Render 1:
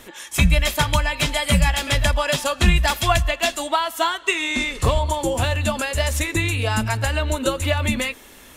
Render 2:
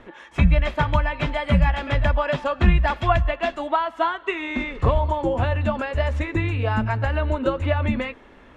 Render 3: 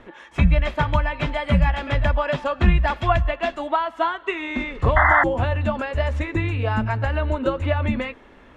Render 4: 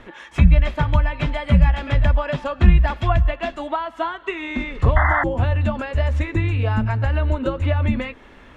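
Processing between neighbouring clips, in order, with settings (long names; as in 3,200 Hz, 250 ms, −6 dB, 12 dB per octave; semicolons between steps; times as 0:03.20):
low-pass filter 1,700 Hz 12 dB per octave
sound drawn into the spectrogram noise, 0:04.96–0:05.24, 650–2,100 Hz −16 dBFS
low-shelf EQ 280 Hz +9 dB; one half of a high-frequency compander encoder only; level −4 dB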